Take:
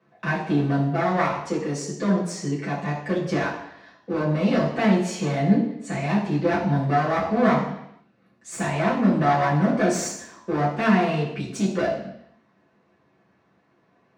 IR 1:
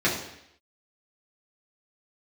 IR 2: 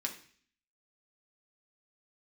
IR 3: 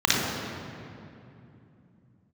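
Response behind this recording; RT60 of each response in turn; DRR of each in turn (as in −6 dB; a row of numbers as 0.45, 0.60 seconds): 1; 0.75, 0.50, 2.8 seconds; −7.0, 0.5, −5.0 decibels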